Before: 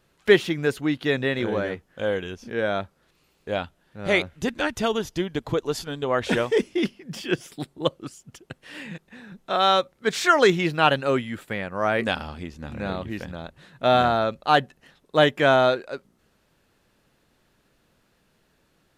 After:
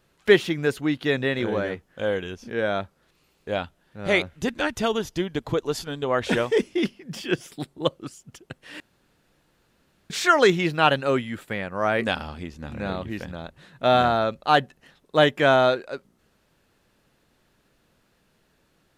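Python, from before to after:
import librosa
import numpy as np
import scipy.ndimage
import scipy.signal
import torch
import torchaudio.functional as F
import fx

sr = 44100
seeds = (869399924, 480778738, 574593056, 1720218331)

y = fx.edit(x, sr, fx.room_tone_fill(start_s=8.8, length_s=1.3), tone=tone)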